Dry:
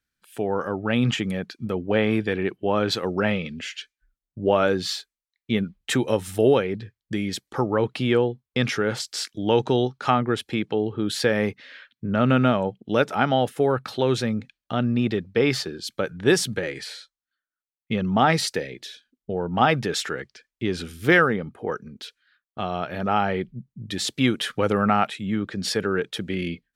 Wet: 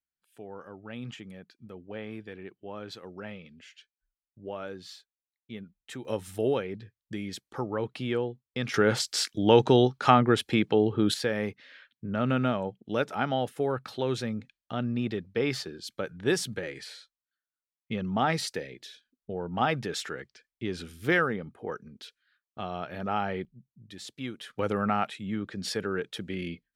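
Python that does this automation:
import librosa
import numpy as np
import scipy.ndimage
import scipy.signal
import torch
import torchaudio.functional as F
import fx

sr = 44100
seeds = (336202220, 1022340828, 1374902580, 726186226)

y = fx.gain(x, sr, db=fx.steps((0.0, -18.0), (6.05, -9.0), (8.74, 1.0), (11.14, -7.5), (23.45, -16.0), (24.59, -7.0)))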